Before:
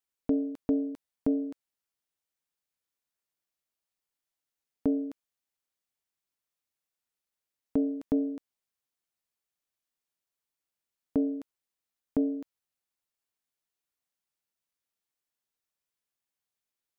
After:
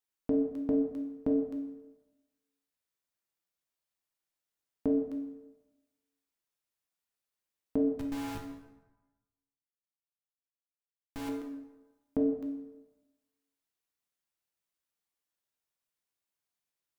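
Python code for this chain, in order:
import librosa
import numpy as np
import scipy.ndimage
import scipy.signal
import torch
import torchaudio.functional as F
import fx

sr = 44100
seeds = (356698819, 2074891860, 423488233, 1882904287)

y = fx.schmitt(x, sr, flips_db=-37.0, at=(7.99, 11.29))
y = fx.rev_plate(y, sr, seeds[0], rt60_s=1.1, hf_ratio=0.65, predelay_ms=0, drr_db=1.5)
y = y * librosa.db_to_amplitude(-3.0)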